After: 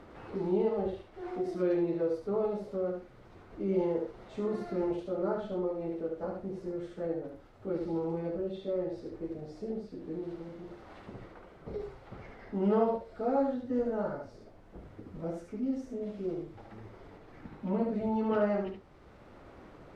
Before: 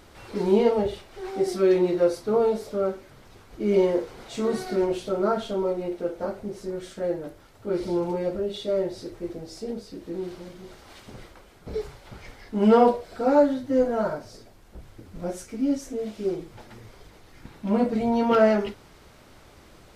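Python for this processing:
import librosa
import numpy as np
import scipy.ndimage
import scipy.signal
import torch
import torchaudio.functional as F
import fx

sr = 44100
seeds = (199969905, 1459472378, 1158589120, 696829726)

p1 = fx.lowpass(x, sr, hz=1300.0, slope=6)
p2 = fx.pitch_keep_formants(p1, sr, semitones=-1.0)
p3 = p2 + fx.echo_single(p2, sr, ms=72, db=-5.5, dry=0)
p4 = fx.band_squash(p3, sr, depth_pct=40)
y = p4 * 10.0 ** (-8.0 / 20.0)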